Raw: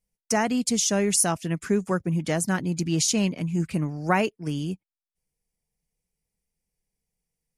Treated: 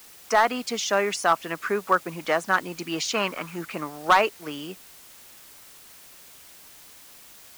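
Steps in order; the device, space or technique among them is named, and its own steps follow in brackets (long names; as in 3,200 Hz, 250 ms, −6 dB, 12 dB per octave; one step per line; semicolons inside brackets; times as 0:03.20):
drive-through speaker (band-pass filter 550–3,100 Hz; parametric band 1,200 Hz +8 dB 0.51 octaves; hard clipping −16 dBFS, distortion −13 dB; white noise bed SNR 21 dB)
0:03.14–0:03.56: parametric band 1,300 Hz +11.5 dB 0.81 octaves
level +6 dB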